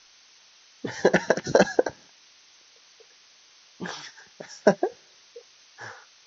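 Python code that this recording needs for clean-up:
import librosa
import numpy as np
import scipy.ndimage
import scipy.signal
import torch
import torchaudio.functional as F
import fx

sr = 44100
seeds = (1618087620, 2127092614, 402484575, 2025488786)

y = fx.noise_reduce(x, sr, print_start_s=3.03, print_end_s=3.53, reduce_db=18.0)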